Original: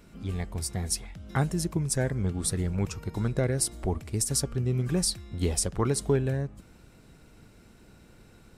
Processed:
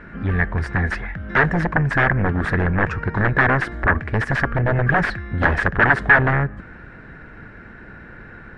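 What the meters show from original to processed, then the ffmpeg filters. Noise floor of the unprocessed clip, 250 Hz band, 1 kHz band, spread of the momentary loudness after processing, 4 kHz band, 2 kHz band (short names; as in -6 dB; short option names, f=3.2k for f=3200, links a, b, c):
-55 dBFS, +7.0 dB, +18.5 dB, 8 LU, -2.5 dB, +26.0 dB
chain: -af "aeval=exprs='0.237*(cos(1*acos(clip(val(0)/0.237,-1,1)))-cos(1*PI/2))+0.00944*(cos(6*acos(clip(val(0)/0.237,-1,1)))-cos(6*PI/2))+0.0133*(cos(7*acos(clip(val(0)/0.237,-1,1)))-cos(7*PI/2))':c=same,aeval=exprs='0.251*sin(PI/2*6.31*val(0)/0.251)':c=same,lowpass=f=1.7k:t=q:w=7.4,volume=-3.5dB"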